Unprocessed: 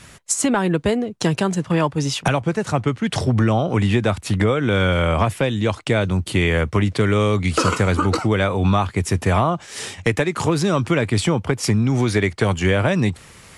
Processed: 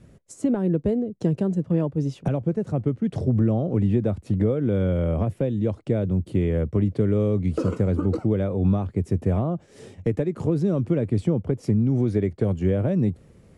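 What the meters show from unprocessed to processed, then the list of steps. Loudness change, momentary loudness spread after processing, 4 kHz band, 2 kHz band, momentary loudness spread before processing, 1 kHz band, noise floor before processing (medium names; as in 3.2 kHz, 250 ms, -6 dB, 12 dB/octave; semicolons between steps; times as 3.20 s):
-4.0 dB, 4 LU, under -20 dB, -21.0 dB, 4 LU, -16.0 dB, -45 dBFS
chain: FFT filter 110 Hz 0 dB, 190 Hz +2 dB, 540 Hz -1 dB, 930 Hz -15 dB, 3.3 kHz -20 dB; trim -3.5 dB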